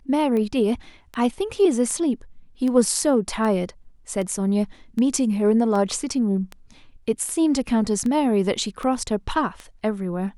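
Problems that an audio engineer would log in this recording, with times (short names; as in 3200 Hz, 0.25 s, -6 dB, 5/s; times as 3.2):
tick 78 rpm -18 dBFS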